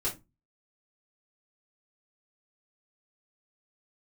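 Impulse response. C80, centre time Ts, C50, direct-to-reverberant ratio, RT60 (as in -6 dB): 21.0 dB, 18 ms, 12.5 dB, -8.0 dB, 0.20 s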